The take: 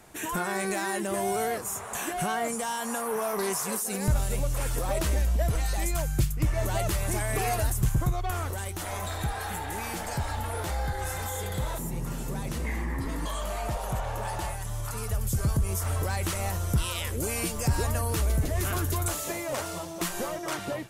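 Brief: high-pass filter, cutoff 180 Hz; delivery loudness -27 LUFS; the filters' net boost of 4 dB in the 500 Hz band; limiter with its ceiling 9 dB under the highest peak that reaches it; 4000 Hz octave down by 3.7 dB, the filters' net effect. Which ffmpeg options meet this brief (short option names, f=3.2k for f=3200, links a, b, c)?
-af "highpass=180,equalizer=f=500:t=o:g=5.5,equalizer=f=4k:t=o:g=-5,volume=6dB,alimiter=limit=-17dB:level=0:latency=1"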